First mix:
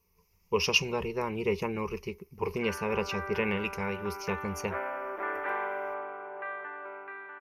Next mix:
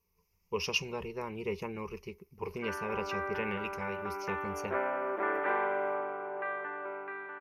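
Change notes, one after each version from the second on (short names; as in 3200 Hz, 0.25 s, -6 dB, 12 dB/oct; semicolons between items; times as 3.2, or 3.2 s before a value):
speech -6.5 dB; background: add low shelf 480 Hz +8 dB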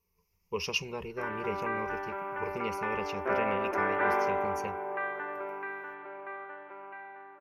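background: entry -1.45 s; reverb: on, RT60 0.75 s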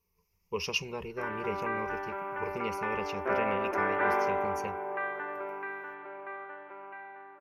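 none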